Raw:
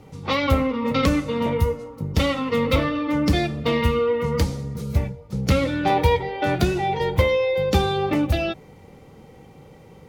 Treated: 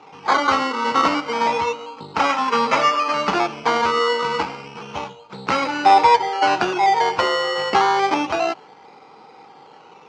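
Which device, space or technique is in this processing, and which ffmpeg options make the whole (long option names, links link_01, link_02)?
circuit-bent sampling toy: -filter_complex "[0:a]asettb=1/sr,asplit=3[link_01][link_02][link_03];[link_01]atrim=end=2.384[link_04];[link_02]atrim=start=2.38:end=3.37,asetpts=PTS-STARTPTS,afade=type=in:duration=0.004:curve=qsin,afade=type=out:start_time=0.986:duration=0.004:curve=qsin,aecho=1:1:5:0.75,atrim=end_sample=43659[link_05];[link_03]atrim=start=3.366[link_06];[link_04][link_05]acrossfade=duration=0.004:curve1=hsin:curve2=qsin[link_07];[link_07][link_06]acrossfade=duration=0.004:curve1=qsin:curve2=hsin,acrusher=samples=14:mix=1:aa=0.000001:lfo=1:lforange=8.4:lforate=0.3,highpass=540,equalizer=frequency=540:width_type=q:width=4:gain=-9,equalizer=frequency=880:width_type=q:width=4:gain=7,equalizer=frequency=1300:width_type=q:width=4:gain=4,equalizer=frequency=1800:width_type=q:width=4:gain=-7,equalizer=frequency=3600:width_type=q:width=4:gain=-9,lowpass=frequency=4800:width=0.5412,lowpass=frequency=4800:width=1.3066,volume=8dB"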